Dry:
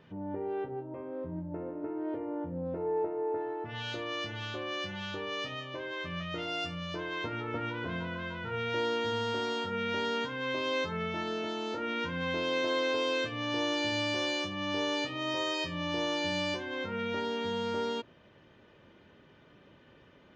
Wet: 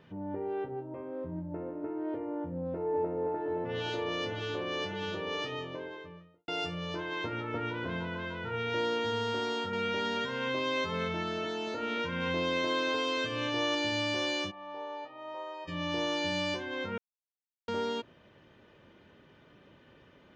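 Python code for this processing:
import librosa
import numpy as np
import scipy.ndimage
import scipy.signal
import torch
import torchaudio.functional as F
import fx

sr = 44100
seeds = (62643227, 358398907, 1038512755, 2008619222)

y = fx.echo_throw(x, sr, start_s=2.41, length_s=0.96, ms=520, feedback_pct=85, wet_db=-5.5)
y = fx.studio_fade_out(y, sr, start_s=5.45, length_s=1.03)
y = fx.echo_single(y, sr, ms=230, db=-7.5, at=(9.5, 13.75))
y = fx.bandpass_q(y, sr, hz=820.0, q=2.7, at=(14.5, 15.67), fade=0.02)
y = fx.edit(y, sr, fx.silence(start_s=16.98, length_s=0.7), tone=tone)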